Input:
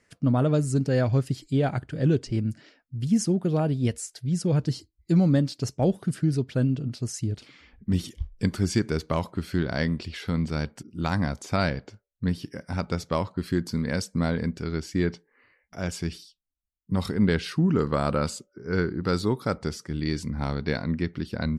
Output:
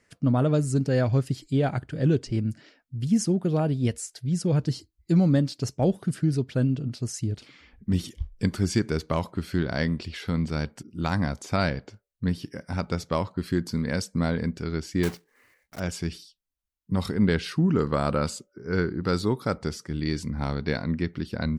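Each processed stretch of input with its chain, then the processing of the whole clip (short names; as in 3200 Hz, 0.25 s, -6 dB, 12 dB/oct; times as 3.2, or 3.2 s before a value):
15.03–15.81 block floating point 3-bit + notch 3400 Hz, Q 26
whole clip: dry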